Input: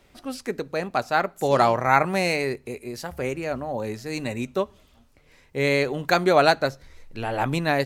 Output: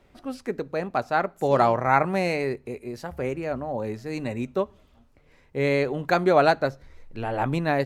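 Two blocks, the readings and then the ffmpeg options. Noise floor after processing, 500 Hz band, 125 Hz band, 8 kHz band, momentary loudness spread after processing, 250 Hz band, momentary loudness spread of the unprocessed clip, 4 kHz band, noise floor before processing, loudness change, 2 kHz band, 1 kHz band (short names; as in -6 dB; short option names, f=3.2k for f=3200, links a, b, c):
-59 dBFS, -0.5 dB, 0.0 dB, n/a, 14 LU, 0.0 dB, 15 LU, -7.5 dB, -58 dBFS, -1.0 dB, -3.5 dB, -1.0 dB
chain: -af "highshelf=f=2.6k:g=-10.5"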